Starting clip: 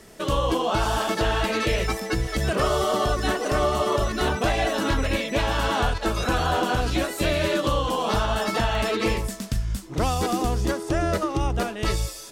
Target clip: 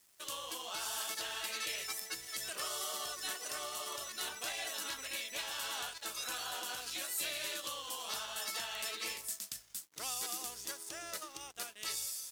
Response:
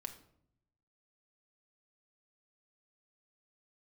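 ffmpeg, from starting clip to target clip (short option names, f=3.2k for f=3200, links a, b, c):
-af "aderivative,aeval=exprs='sgn(val(0))*max(abs(val(0))-0.00211,0)':c=same,volume=-1.5dB"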